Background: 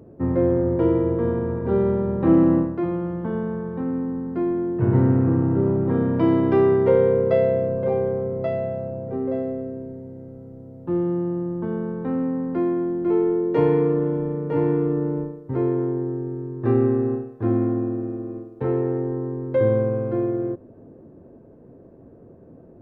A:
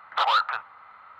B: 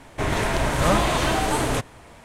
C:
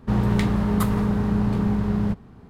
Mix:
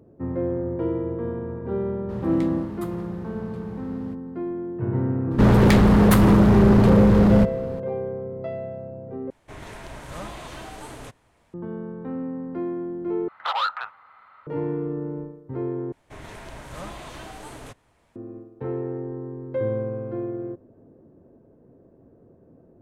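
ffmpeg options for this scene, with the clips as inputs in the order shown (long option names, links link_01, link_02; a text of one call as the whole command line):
ffmpeg -i bed.wav -i cue0.wav -i cue1.wav -i cue2.wav -filter_complex "[3:a]asplit=2[link_01][link_02];[2:a]asplit=2[link_03][link_04];[0:a]volume=-6.5dB[link_05];[link_01]highpass=63[link_06];[link_02]aeval=exprs='0.422*sin(PI/2*3.16*val(0)/0.422)':channel_layout=same[link_07];[link_05]asplit=4[link_08][link_09][link_10][link_11];[link_08]atrim=end=9.304[link_12];[link_03]atrim=end=2.24,asetpts=PTS-STARTPTS,volume=-16.5dB[link_13];[link_09]atrim=start=11.536:end=13.284[link_14];[1:a]atrim=end=1.19,asetpts=PTS-STARTPTS,volume=-3dB[link_15];[link_10]atrim=start=14.466:end=15.924[link_16];[link_04]atrim=end=2.24,asetpts=PTS-STARTPTS,volume=-17.5dB[link_17];[link_11]atrim=start=18.156[link_18];[link_06]atrim=end=2.49,asetpts=PTS-STARTPTS,volume=-14dB,afade=type=in:duration=0.004:curve=hsin,afade=type=out:start_time=2.486:duration=0.004:curve=hsin,adelay=2010[link_19];[link_07]atrim=end=2.49,asetpts=PTS-STARTPTS,volume=-3.5dB,afade=type=in:duration=0.004:curve=hsin,afade=type=out:start_time=2.486:duration=0.004:curve=hsin,adelay=5310[link_20];[link_12][link_13]acrossfade=duration=0.004:curve1=hsin:curve2=hsin[link_21];[link_21][link_14]acrossfade=duration=0.004:curve1=hsin:curve2=hsin[link_22];[link_22][link_15]acrossfade=duration=0.004:curve1=hsin:curve2=hsin[link_23];[link_23][link_16]acrossfade=duration=0.004:curve1=hsin:curve2=hsin[link_24];[link_24][link_17]acrossfade=duration=0.004:curve1=hsin:curve2=hsin[link_25];[link_25][link_18]acrossfade=duration=0.004:curve1=hsin:curve2=hsin[link_26];[link_26][link_19][link_20]amix=inputs=3:normalize=0" out.wav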